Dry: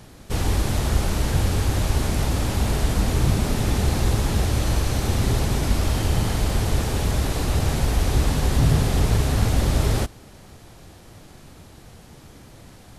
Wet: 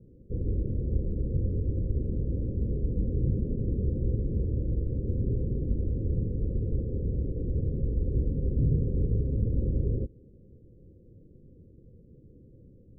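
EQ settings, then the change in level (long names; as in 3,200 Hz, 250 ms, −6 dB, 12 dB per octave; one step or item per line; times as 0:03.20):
Chebyshev low-pass filter 520 Hz, order 6
−6.5 dB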